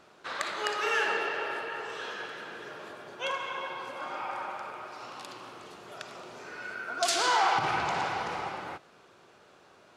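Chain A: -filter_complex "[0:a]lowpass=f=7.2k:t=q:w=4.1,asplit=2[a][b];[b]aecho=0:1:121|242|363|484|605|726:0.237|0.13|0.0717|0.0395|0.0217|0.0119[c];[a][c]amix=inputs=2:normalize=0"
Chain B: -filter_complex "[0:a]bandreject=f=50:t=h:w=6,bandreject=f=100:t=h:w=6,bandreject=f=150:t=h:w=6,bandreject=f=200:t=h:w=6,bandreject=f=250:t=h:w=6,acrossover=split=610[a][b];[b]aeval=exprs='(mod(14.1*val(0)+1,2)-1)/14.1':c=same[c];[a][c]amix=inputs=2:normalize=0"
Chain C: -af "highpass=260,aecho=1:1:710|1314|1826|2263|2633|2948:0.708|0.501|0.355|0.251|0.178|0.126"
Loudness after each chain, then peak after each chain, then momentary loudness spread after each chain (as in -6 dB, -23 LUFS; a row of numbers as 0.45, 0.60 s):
-29.5, -32.0, -30.0 LUFS; -7.5, -19.0, -12.0 dBFS; 19, 17, 12 LU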